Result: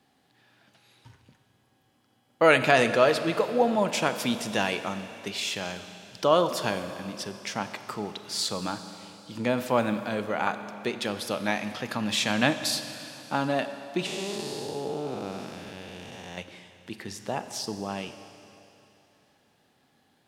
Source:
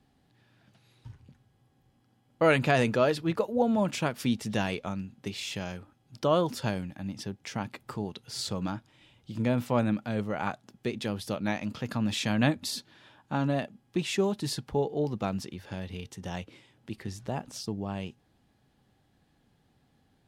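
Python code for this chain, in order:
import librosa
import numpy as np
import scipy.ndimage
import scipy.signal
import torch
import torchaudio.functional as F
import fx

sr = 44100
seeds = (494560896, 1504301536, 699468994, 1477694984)

y = fx.spec_blur(x, sr, span_ms=456.0, at=(14.06, 16.38))
y = fx.highpass(y, sr, hz=480.0, slope=6)
y = fx.rev_schroeder(y, sr, rt60_s=3.1, comb_ms=30, drr_db=9.5)
y = y * librosa.db_to_amplitude(6.0)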